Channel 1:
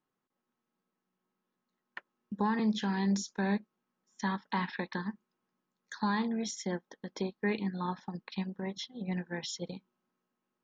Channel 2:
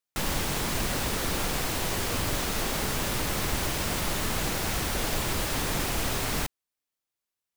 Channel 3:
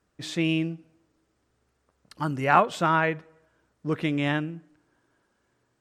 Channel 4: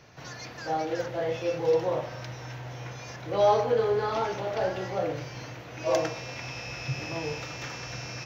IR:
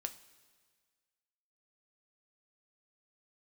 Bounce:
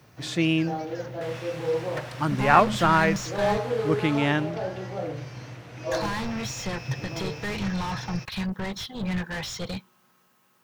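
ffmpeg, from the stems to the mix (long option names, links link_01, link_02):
-filter_complex "[0:a]aemphasis=mode=production:type=50fm,asplit=2[link_01][link_02];[link_02]highpass=frequency=720:poles=1,volume=34dB,asoftclip=type=tanh:threshold=-20dB[link_03];[link_01][link_03]amix=inputs=2:normalize=0,lowpass=frequency=3100:poles=1,volume=-6dB,lowshelf=frequency=180:width_type=q:width=1.5:gain=12.5,volume=-4.5dB,asplit=3[link_04][link_05][link_06];[link_04]atrim=end=3.6,asetpts=PTS-STARTPTS,afade=type=out:start_time=3.596:duration=0.004:curve=hsin[link_07];[link_05]atrim=start=3.6:end=5.9,asetpts=PTS-STARTPTS,volume=0[link_08];[link_06]atrim=start=5.9,asetpts=PTS-STARTPTS,afade=type=in:duration=0.004:curve=hsin[link_09];[link_07][link_08][link_09]concat=n=3:v=0:a=1[link_10];[1:a]bandpass=frequency=1700:width_type=q:width=0.96:csg=0,adelay=1050,volume=-7.5dB,afade=type=out:start_time=4.11:duration=0.41:silence=0.298538[link_11];[2:a]volume=2dB[link_12];[3:a]highpass=90,lowshelf=frequency=250:gain=10.5,volume=-5dB[link_13];[link_10][link_11][link_12][link_13]amix=inputs=4:normalize=0"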